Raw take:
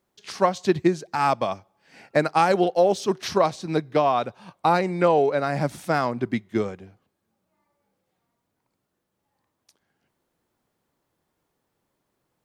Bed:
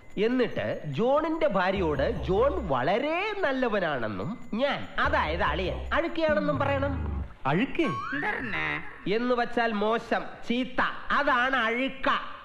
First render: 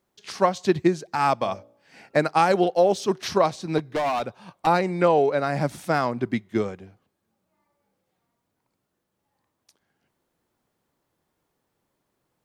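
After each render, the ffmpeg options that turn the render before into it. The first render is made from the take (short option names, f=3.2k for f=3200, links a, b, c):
-filter_complex "[0:a]asettb=1/sr,asplit=3[a][b][c];[a]atrim=end=1.384[d];[b]atrim=start=1.38:end=2.18,asetpts=PTS-STARTPTS,afade=t=in:d=0.004:c=qsin,afade=t=out:st=0.796:d=0.004:c=qsin,bandreject=f=57.38:t=h:w=4,bandreject=f=114.76:t=h:w=4,bandreject=f=172.14:t=h:w=4,bandreject=f=229.52:t=h:w=4,bandreject=f=286.9:t=h:w=4,bandreject=f=344.28:t=h:w=4,bandreject=f=401.66:t=h:w=4,bandreject=f=459.04:t=h:w=4,bandreject=f=516.42:t=h:w=4,bandreject=f=573.8:t=h:w=4,bandreject=f=631.18:t=h:w=4[e];[c]atrim=start=2.176[f];[d][e]acrossfade=d=0.004:c1=hsin:c2=qsin[g];[g][f]acrossfade=d=0.004:c1=qsin:c2=hsin,asettb=1/sr,asplit=3[h][i][j];[h]atrim=end=3.784[k];[i]atrim=start=3.78:end=4.67,asetpts=PTS-STARTPTS,afade=t=in:d=0.004:c=qsin,afade=t=out:st=0.886:d=0.004:c=qsin,asoftclip=type=hard:threshold=-21.5dB[l];[j]atrim=start=4.666[m];[k][l]acrossfade=d=0.004:c1=hsin:c2=qsin[n];[n][m]acrossfade=d=0.004:c1=qsin:c2=hsin"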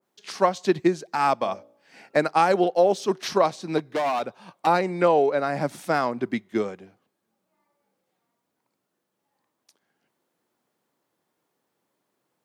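-af "highpass=190,adynamicequalizer=threshold=0.0251:dfrequency=2000:dqfactor=0.7:tfrequency=2000:tqfactor=0.7:attack=5:release=100:ratio=0.375:range=2:mode=cutabove:tftype=highshelf"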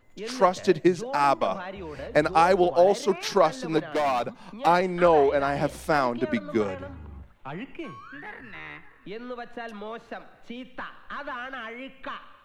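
-filter_complex "[1:a]volume=-11dB[a];[0:a][a]amix=inputs=2:normalize=0"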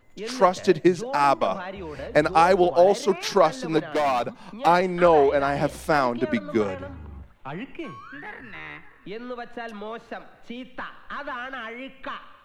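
-af "volume=2dB"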